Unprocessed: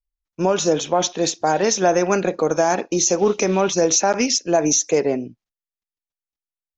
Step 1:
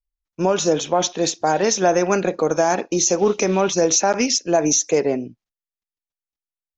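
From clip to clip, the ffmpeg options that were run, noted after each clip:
-af anull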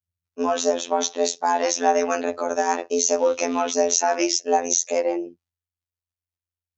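-af "afreqshift=89,afftfilt=real='hypot(re,im)*cos(PI*b)':imag='0':win_size=2048:overlap=0.75"

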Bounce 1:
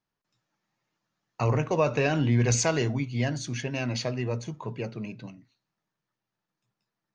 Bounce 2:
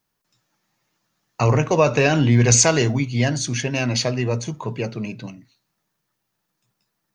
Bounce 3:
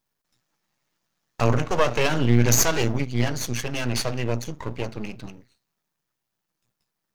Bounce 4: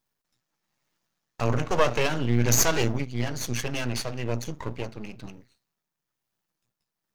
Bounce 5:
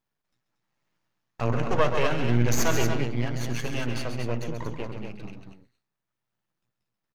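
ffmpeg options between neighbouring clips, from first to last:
-af "highshelf=f=6.6k:g=11,volume=7.5dB"
-af "aeval=exprs='max(val(0),0)':c=same"
-af "tremolo=f=1.1:d=0.42,volume=-1dB"
-af "bass=f=250:g=1,treble=f=4k:g=-8,aecho=1:1:134.1|233.2:0.398|0.447,volume=-1.5dB"

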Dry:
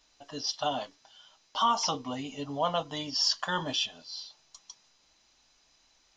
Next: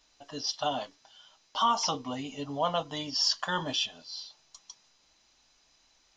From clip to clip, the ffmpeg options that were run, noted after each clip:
-af anull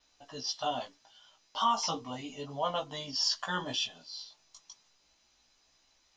-af "adynamicequalizer=threshold=0.00126:dfrequency=8000:dqfactor=4.8:tfrequency=8000:tqfactor=4.8:attack=5:release=100:ratio=0.375:range=3:mode=boostabove:tftype=bell,flanger=delay=15:depth=3.2:speed=0.33"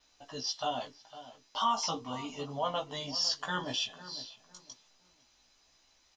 -filter_complex "[0:a]asplit=2[a][b];[b]alimiter=level_in=5dB:limit=-24dB:level=0:latency=1:release=309,volume=-5dB,volume=-3dB[c];[a][c]amix=inputs=2:normalize=0,asplit=2[d][e];[e]adelay=505,lowpass=f=1.4k:p=1,volume=-14dB,asplit=2[f][g];[g]adelay=505,lowpass=f=1.4k:p=1,volume=0.28,asplit=2[h][i];[i]adelay=505,lowpass=f=1.4k:p=1,volume=0.28[j];[d][f][h][j]amix=inputs=4:normalize=0,volume=-3dB"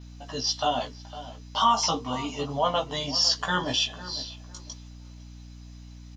-af "aeval=exprs='val(0)+0.00282*(sin(2*PI*60*n/s)+sin(2*PI*2*60*n/s)/2+sin(2*PI*3*60*n/s)/3+sin(2*PI*4*60*n/s)/4+sin(2*PI*5*60*n/s)/5)':c=same,volume=8dB"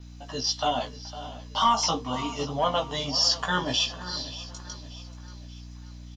-filter_complex "[0:a]acrossover=split=630|880[a][b][c];[b]aeval=exprs='clip(val(0),-1,0.0266)':c=same[d];[a][d][c]amix=inputs=3:normalize=0,aecho=1:1:583|1166|1749|2332:0.15|0.0688|0.0317|0.0146"

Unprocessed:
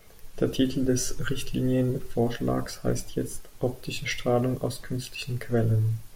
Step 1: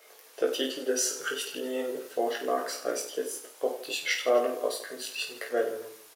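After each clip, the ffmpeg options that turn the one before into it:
-filter_complex "[0:a]highpass=f=410:w=0.5412,highpass=f=410:w=1.3066,flanger=delay=6.4:depth=3.7:regen=-77:speed=0.52:shape=triangular,asplit=2[a][b];[b]aecho=0:1:20|50|95|162.5|263.8:0.631|0.398|0.251|0.158|0.1[c];[a][c]amix=inputs=2:normalize=0,volume=5dB"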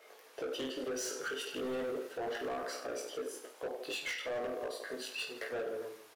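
-af "highshelf=f=4.5k:g=-12,alimiter=level_in=1dB:limit=-24dB:level=0:latency=1:release=239,volume=-1dB,asoftclip=type=hard:threshold=-34dB"

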